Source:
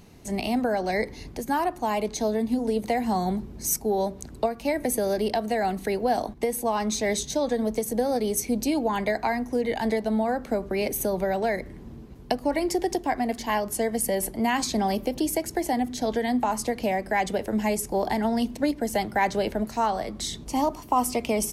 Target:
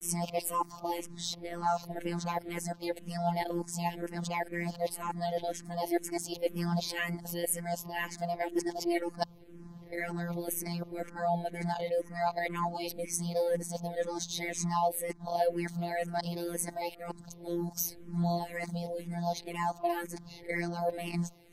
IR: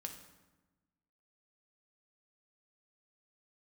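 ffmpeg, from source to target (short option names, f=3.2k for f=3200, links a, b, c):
-filter_complex "[0:a]areverse,afftfilt=real='hypot(re,im)*cos(PI*b)':imag='0':win_size=1024:overlap=0.75,asplit=2[a][b];[b]afreqshift=-2[c];[a][c]amix=inputs=2:normalize=1"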